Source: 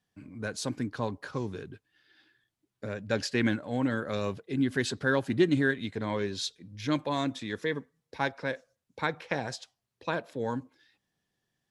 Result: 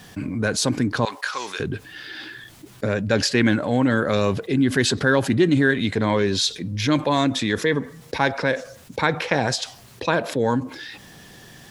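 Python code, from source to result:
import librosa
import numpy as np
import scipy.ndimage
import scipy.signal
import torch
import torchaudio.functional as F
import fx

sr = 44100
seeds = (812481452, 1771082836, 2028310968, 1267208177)

y = fx.highpass(x, sr, hz=1400.0, slope=12, at=(1.05, 1.6))
y = fx.env_flatten(y, sr, amount_pct=50)
y = F.gain(torch.from_numpy(y), 5.0).numpy()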